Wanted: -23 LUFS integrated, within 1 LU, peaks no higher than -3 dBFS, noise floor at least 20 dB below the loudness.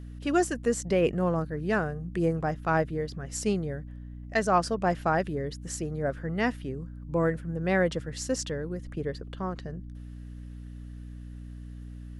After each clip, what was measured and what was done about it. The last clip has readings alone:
hum 60 Hz; highest harmonic 300 Hz; hum level -39 dBFS; loudness -29.5 LUFS; peak level -11.0 dBFS; loudness target -23.0 LUFS
-> hum notches 60/120/180/240/300 Hz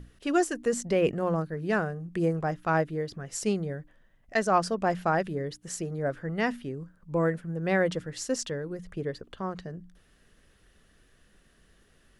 hum not found; loudness -29.5 LUFS; peak level -11.0 dBFS; loudness target -23.0 LUFS
-> trim +6.5 dB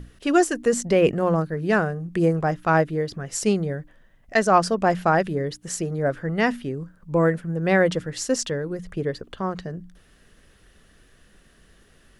loudness -23.0 LUFS; peak level -4.5 dBFS; noise floor -57 dBFS

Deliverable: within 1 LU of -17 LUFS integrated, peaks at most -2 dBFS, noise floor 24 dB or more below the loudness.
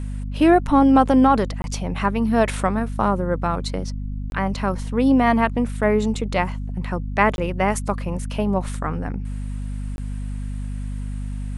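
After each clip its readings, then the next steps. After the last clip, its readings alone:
dropouts 4; longest dropout 21 ms; hum 50 Hz; highest harmonic 250 Hz; hum level -25 dBFS; loudness -21.5 LUFS; peak level -3.0 dBFS; loudness target -17.0 LUFS
-> interpolate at 1.62/4.30/7.36/9.96 s, 21 ms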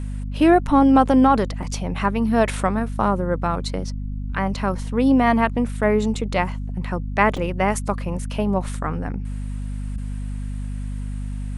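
dropouts 0; hum 50 Hz; highest harmonic 250 Hz; hum level -25 dBFS
-> de-hum 50 Hz, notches 5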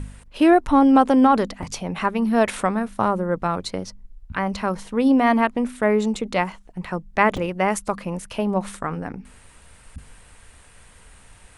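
hum not found; loudness -21.0 LUFS; peak level -3.0 dBFS; loudness target -17.0 LUFS
-> trim +4 dB; peak limiter -2 dBFS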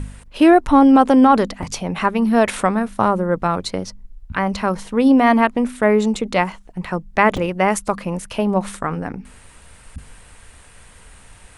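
loudness -17.5 LUFS; peak level -2.0 dBFS; noise floor -46 dBFS

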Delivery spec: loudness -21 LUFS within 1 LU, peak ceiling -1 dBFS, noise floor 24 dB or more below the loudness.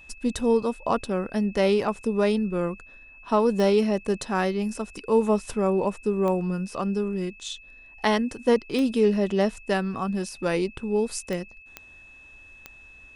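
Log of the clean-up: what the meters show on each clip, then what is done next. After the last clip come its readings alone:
clicks found 6; steady tone 2.6 kHz; tone level -47 dBFS; loudness -25.0 LUFS; peak level -9.0 dBFS; loudness target -21.0 LUFS
-> de-click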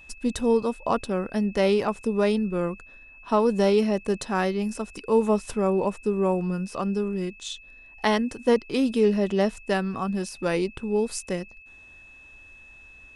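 clicks found 0; steady tone 2.6 kHz; tone level -47 dBFS
-> band-stop 2.6 kHz, Q 30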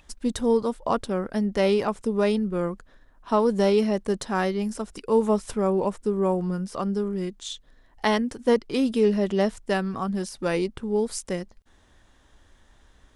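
steady tone not found; loudness -25.0 LUFS; peak level -9.0 dBFS; loudness target -21.0 LUFS
-> trim +4 dB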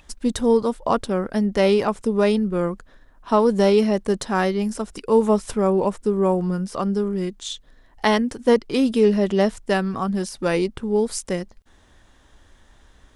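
loudness -21.0 LUFS; peak level -5.0 dBFS; noise floor -54 dBFS

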